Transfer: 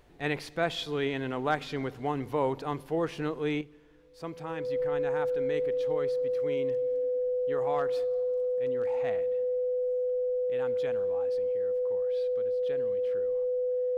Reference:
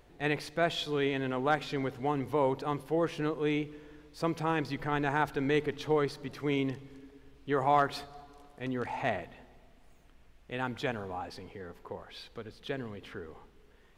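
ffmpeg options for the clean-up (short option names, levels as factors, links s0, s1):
-af "bandreject=f=500:w=30,asetnsamples=n=441:p=0,asendcmd='3.61 volume volume 8dB',volume=1"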